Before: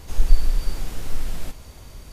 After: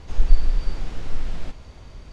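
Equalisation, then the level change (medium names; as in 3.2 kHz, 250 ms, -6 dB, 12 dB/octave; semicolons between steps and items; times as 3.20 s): distance through air 120 m; 0.0 dB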